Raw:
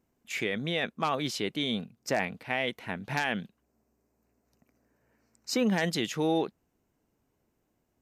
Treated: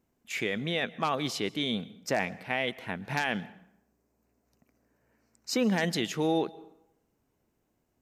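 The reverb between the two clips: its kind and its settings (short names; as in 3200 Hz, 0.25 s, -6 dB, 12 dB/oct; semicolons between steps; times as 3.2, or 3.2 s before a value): plate-style reverb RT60 0.78 s, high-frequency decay 0.7×, pre-delay 0.11 s, DRR 20 dB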